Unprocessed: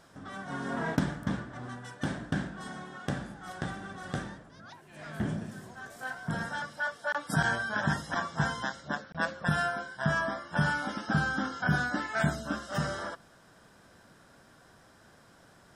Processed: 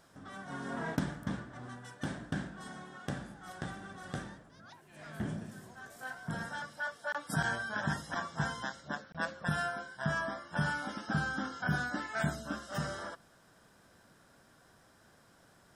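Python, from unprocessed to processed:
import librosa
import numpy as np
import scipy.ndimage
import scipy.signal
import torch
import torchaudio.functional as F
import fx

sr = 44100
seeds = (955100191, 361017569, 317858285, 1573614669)

y = fx.high_shelf(x, sr, hz=10000.0, db=6.5)
y = F.gain(torch.from_numpy(y), -5.0).numpy()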